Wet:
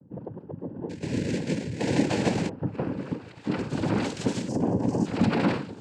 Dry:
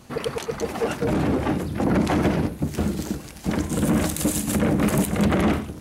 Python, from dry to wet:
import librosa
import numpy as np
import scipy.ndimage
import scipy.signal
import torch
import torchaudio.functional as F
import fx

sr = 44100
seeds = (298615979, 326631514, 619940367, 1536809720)

y = fx.filter_sweep_lowpass(x, sr, from_hz=250.0, to_hz=4400.0, start_s=1.22, end_s=3.8, q=1.0)
y = fx.sample_hold(y, sr, seeds[0], rate_hz=2500.0, jitter_pct=0, at=(0.89, 2.49))
y = fx.spec_box(y, sr, start_s=4.48, length_s=0.58, low_hz=740.0, high_hz=5500.0, gain_db=-18)
y = fx.noise_vocoder(y, sr, seeds[1], bands=8)
y = y * librosa.db_to_amplitude(-3.5)